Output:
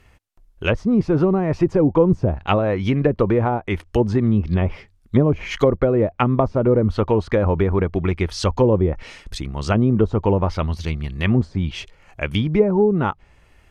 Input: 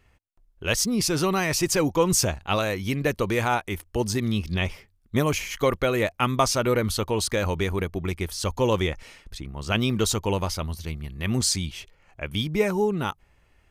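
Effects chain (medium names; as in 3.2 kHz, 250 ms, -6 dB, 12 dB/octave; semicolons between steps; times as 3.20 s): low-pass that closes with the level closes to 550 Hz, closed at -19 dBFS; trim +8 dB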